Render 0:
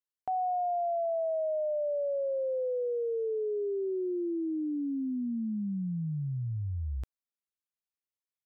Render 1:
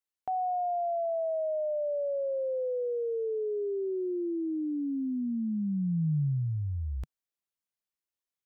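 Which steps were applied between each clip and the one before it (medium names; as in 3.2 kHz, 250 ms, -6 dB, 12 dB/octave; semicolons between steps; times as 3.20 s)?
dynamic bell 150 Hz, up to +6 dB, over -47 dBFS, Q 2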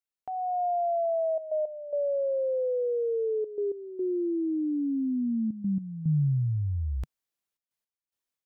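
trance gate "xxxxxxxxxx.x..x" 109 bpm -12 dB; level rider gain up to 8 dB; trim -4.5 dB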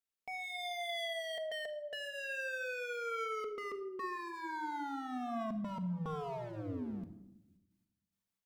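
wavefolder -34.5 dBFS; simulated room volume 3100 m³, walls furnished, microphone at 1.6 m; trim -3 dB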